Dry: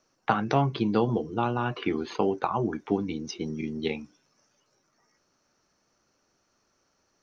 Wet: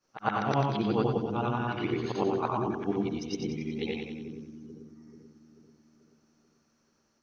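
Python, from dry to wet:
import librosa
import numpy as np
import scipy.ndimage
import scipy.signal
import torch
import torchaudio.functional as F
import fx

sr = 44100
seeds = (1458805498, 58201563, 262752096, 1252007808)

p1 = fx.frame_reverse(x, sr, frame_ms=233.0)
y = p1 + fx.echo_split(p1, sr, split_hz=380.0, low_ms=437, high_ms=92, feedback_pct=52, wet_db=-6.5, dry=0)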